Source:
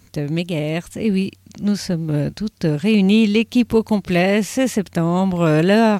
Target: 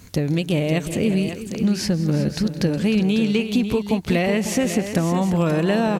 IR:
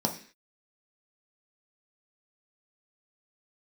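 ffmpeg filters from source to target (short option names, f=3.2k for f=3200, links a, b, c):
-af "acompressor=threshold=-23dB:ratio=6,aecho=1:1:165|194|363|548:0.112|0.106|0.211|0.335,volume=5.5dB"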